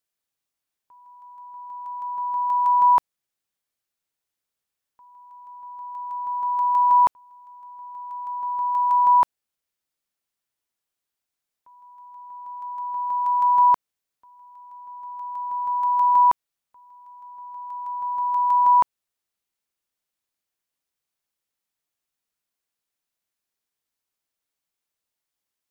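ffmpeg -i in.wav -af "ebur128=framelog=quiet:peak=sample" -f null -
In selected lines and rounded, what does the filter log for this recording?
Integrated loudness:
  I:         -20.8 LUFS
  Threshold: -33.4 LUFS
Loudness range:
  LRA:         8.3 LU
  Threshold: -44.5 LUFS
  LRA low:   -30.1 LUFS
  LRA high:  -21.8 LUFS
Sample peak:
  Peak:      -11.5 dBFS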